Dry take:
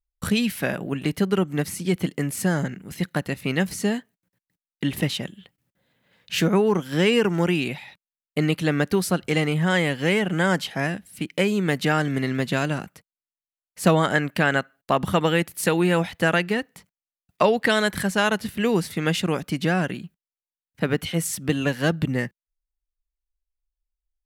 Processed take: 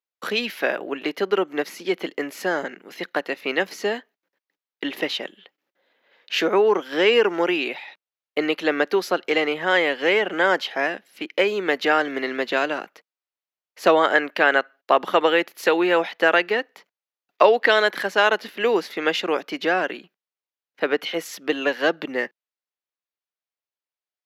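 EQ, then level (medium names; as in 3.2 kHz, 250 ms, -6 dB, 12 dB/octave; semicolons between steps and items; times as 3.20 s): boxcar filter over 5 samples; high-pass 350 Hz 24 dB/octave; +4.5 dB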